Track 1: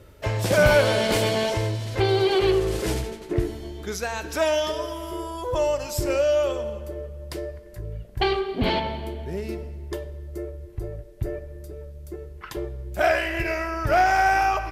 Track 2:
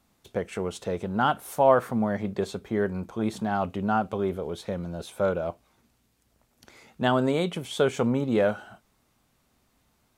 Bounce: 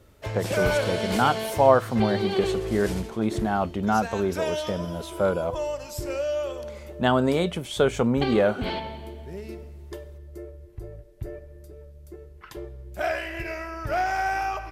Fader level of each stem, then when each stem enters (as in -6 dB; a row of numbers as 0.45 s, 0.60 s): -6.5 dB, +2.0 dB; 0.00 s, 0.00 s